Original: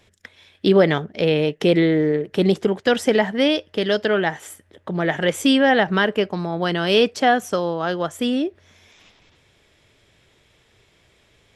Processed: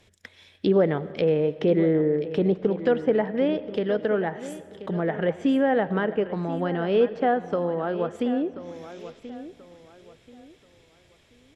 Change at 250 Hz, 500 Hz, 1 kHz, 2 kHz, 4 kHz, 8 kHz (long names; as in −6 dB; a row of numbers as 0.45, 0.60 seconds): −4.5 dB, −3.5 dB, −6.5 dB, −11.0 dB, −17.0 dB, below −15 dB